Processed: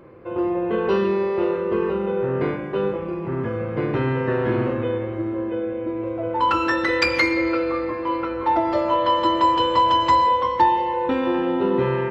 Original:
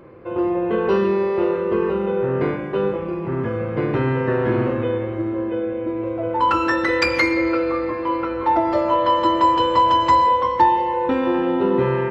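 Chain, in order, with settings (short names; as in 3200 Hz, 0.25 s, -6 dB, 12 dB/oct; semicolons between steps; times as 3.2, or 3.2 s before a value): dynamic EQ 3500 Hz, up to +4 dB, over -37 dBFS, Q 1.3; gain -2 dB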